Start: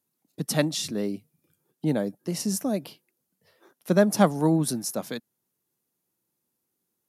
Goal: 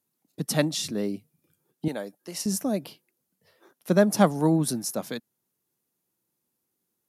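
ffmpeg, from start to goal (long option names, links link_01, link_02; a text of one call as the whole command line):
ffmpeg -i in.wav -filter_complex "[0:a]asettb=1/sr,asplit=3[link_01][link_02][link_03];[link_01]atrim=end=1.884[link_04];[link_02]atrim=start=1.88:end=2.46,asetpts=PTS-STARTPTS,afade=type=in:duration=0.004:curve=qsin,afade=type=out:start_time=0.576:duration=0.004:curve=qsin,highpass=frequency=860:poles=1[link_05];[link_03]atrim=start=2.456[link_06];[link_04][link_05]acrossfade=duration=0.004:curve1=hsin:curve2=qsin[link_07];[link_07][link_06]acrossfade=duration=0.004:curve1=qsin:curve2=hsin" out.wav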